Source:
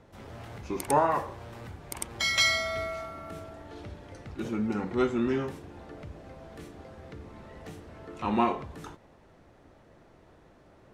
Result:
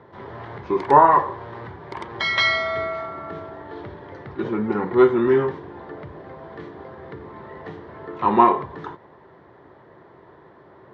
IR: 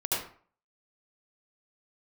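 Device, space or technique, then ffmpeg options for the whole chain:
guitar cabinet: -af "highpass=110,equalizer=f=130:t=q:w=4:g=3,equalizer=f=240:t=q:w=4:g=-4,equalizer=f=390:t=q:w=4:g=8,equalizer=f=1k:t=q:w=4:g=10,equalizer=f=1.8k:t=q:w=4:g=6,equalizer=f=2.6k:t=q:w=4:g=-9,lowpass=f=3.7k:w=0.5412,lowpass=f=3.7k:w=1.3066,volume=6dB"

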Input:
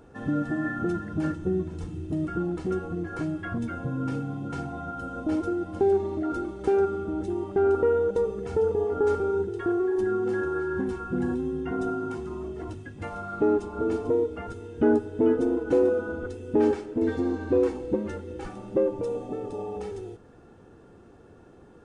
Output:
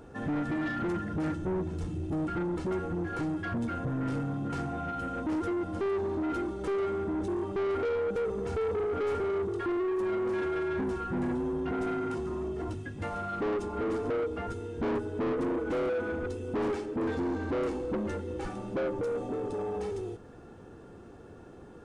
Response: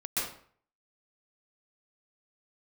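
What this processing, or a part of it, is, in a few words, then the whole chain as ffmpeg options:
saturation between pre-emphasis and de-emphasis: -af "highshelf=f=2.8k:g=11,asoftclip=type=tanh:threshold=-30dB,highshelf=f=2.8k:g=-11,volume=2.5dB"

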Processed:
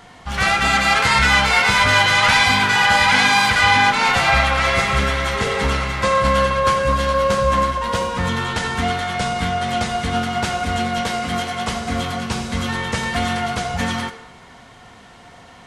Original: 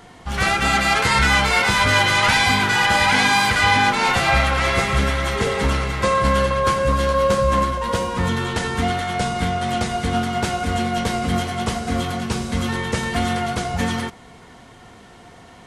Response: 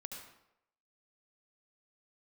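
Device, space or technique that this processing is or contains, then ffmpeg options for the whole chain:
filtered reverb send: -filter_complex "[0:a]asplit=2[a][b];[b]highpass=f=350:w=0.5412,highpass=f=350:w=1.3066,lowpass=8k[c];[1:a]atrim=start_sample=2205[d];[c][d]afir=irnorm=-1:irlink=0,volume=-1dB[e];[a][e]amix=inputs=2:normalize=0,asettb=1/sr,asplit=3[f][g][h];[f]atrim=end=11.014[i];[g]atrim=start=11.01:end=11.69,asetpts=PTS-STARTPTS,afade=t=in:d=0.004:c=qsin,afade=t=out:st=0.676:d=0.004:c=qsin,lowshelf=f=150:g=-8[j];[h]atrim=start=11.686[k];[i][j]acrossfade=d=0.004:c1=hsin:c2=qsin[l];[l][k]acrossfade=d=0.004:c1=qsin:c2=hsin,volume=-1dB"

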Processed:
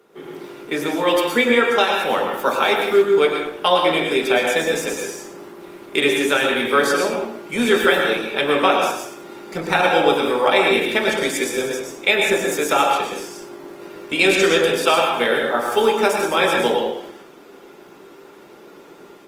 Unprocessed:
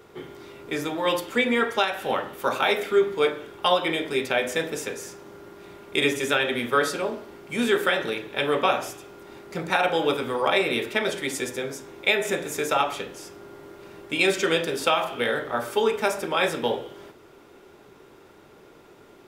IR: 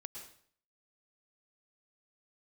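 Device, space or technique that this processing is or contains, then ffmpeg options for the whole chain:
far-field microphone of a smart speaker: -filter_complex "[1:a]atrim=start_sample=2205[a];[0:a][a]afir=irnorm=-1:irlink=0,highpass=f=160:w=0.5412,highpass=f=160:w=1.3066,dynaudnorm=f=130:g=3:m=9dB,volume=2dB" -ar 48000 -c:a libopus -b:a 24k

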